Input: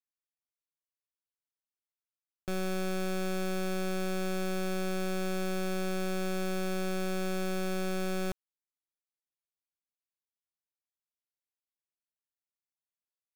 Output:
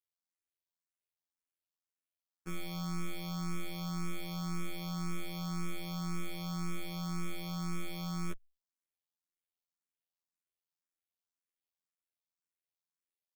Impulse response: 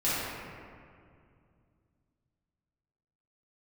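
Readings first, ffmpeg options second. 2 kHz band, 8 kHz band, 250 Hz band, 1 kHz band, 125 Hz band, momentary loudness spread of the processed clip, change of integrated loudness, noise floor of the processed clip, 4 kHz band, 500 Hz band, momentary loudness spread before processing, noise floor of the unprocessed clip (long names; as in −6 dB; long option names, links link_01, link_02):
−9.0 dB, −5.0 dB, −5.5 dB, −6.0 dB, can't be measured, 2 LU, −6.0 dB, below −85 dBFS, −3.5 dB, −16.5 dB, 1 LU, below −85 dBFS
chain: -filter_complex "[0:a]afftfilt=real='hypot(re,im)*cos(PI*b)':imag='0':win_size=2048:overlap=0.75,asplit=2[link_01][link_02];[link_02]afreqshift=1.9[link_03];[link_01][link_03]amix=inputs=2:normalize=1,volume=2dB"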